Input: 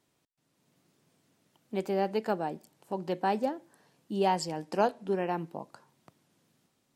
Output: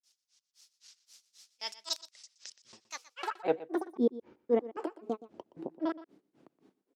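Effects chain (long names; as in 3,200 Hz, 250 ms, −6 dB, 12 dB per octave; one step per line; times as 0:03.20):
slices reordered back to front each 124 ms, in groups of 6
tilt shelving filter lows −6.5 dB, about 1,100 Hz
in parallel at +1.5 dB: downward compressor, threshold −38 dBFS, peak gain reduction 14.5 dB
on the sum: brickwall limiter −22 dBFS, peak gain reduction 9.5 dB
automatic gain control gain up to 13 dB
granular cloud 179 ms, grains 3.8 per second, spray 13 ms, pitch spread up and down by 12 semitones
band-pass filter sweep 5,400 Hz → 330 Hz, 0:03.03–0:03.67
on a send: single-tap delay 121 ms −17 dB
on the sum: level +2.5 dB
Opus 96 kbit/s 48,000 Hz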